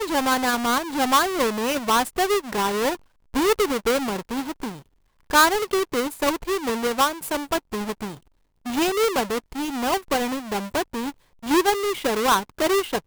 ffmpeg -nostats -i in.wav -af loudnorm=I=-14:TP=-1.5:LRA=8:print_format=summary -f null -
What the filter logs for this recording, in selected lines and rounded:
Input Integrated:    -22.9 LUFS
Input True Peak:      -5.6 dBTP
Input LRA:             3.4 LU
Input Threshold:     -33.3 LUFS